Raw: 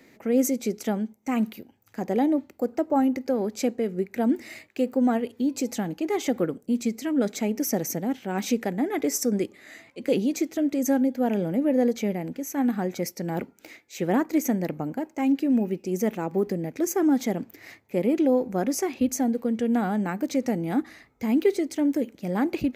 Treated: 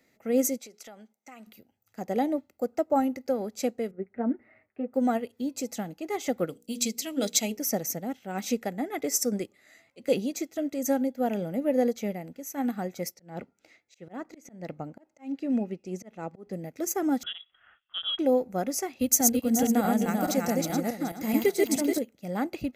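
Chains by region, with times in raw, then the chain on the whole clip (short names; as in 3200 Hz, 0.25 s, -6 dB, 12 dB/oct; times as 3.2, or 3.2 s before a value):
0.58–1.47 weighting filter A + compressor 5:1, threshold -33 dBFS
3.91–4.94 LPF 1800 Hz 24 dB/oct + notch comb 170 Hz
6.47–7.57 resonant high shelf 2300 Hz +9 dB, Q 1.5 + notches 60/120/180/240/300/360/420/480 Hz
13.14–16.53 air absorption 63 m + auto swell 0.212 s
17.23–18.19 HPF 670 Hz 6 dB/oct + inverted band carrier 3600 Hz
18.99–21.99 regenerating reverse delay 0.213 s, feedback 47%, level -1 dB + high shelf 6300 Hz +10.5 dB
whole clip: tone controls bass -1 dB, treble +4 dB; comb 1.5 ms, depth 33%; upward expander 1.5:1, over -42 dBFS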